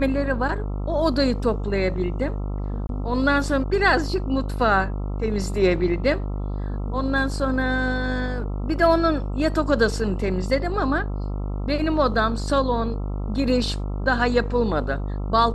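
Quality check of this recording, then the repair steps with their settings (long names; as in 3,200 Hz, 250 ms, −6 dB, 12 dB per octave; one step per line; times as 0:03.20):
mains buzz 50 Hz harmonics 27 −27 dBFS
0:02.87–0:02.89: drop-out 22 ms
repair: hum removal 50 Hz, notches 27
repair the gap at 0:02.87, 22 ms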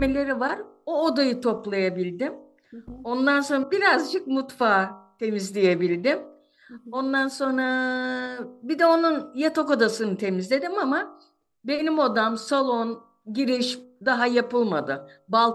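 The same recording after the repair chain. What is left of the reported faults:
none of them is left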